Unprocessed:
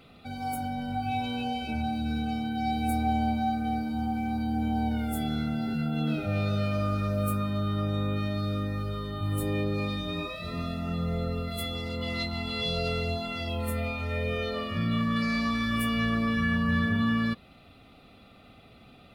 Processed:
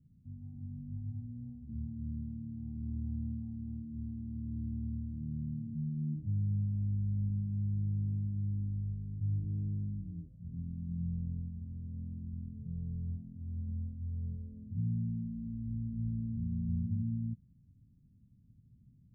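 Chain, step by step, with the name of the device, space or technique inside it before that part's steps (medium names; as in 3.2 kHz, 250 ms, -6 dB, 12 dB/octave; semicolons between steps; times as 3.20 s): the neighbour's flat through the wall (low-pass 200 Hz 24 dB/octave; peaking EQ 120 Hz +7 dB 0.95 oct); trim -8 dB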